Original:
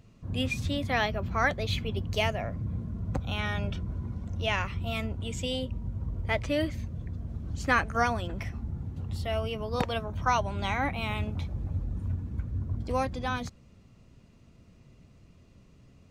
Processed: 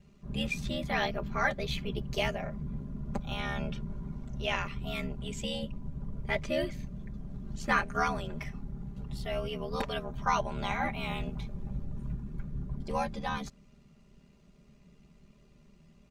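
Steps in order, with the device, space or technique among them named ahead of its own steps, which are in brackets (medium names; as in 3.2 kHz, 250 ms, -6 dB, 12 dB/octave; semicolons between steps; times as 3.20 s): ring-modulated robot voice (ring modulator 37 Hz; comb 5 ms, depth 82%); trim -2 dB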